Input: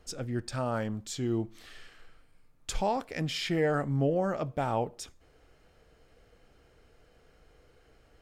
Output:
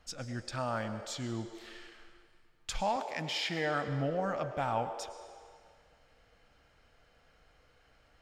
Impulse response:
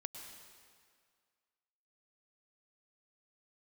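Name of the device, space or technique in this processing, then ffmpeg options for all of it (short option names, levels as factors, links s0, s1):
filtered reverb send: -filter_complex "[0:a]asettb=1/sr,asplit=3[s0][s1][s2];[s0]atrim=end=2.964[s3];[s1]atrim=start=2.96:end=3.88,asetpts=PTS-STARTPTS,afade=t=in:d=0.004:c=qsin,afade=t=out:st=0.916:d=0.004:c=qsin,highpass=160[s4];[s2]atrim=start=3.876[s5];[s3][s4]acrossfade=d=0.004:c1=hsin:c2=qsin[s6];[s6][s5]acrossfade=d=0.004:c1=qsin:c2=hsin,asplit=2[s7][s8];[s8]highpass=f=390:w=0.5412,highpass=f=390:w=1.3066,lowpass=6900[s9];[1:a]atrim=start_sample=2205[s10];[s9][s10]afir=irnorm=-1:irlink=0,volume=1.5[s11];[s7][s11]amix=inputs=2:normalize=0,volume=0.531"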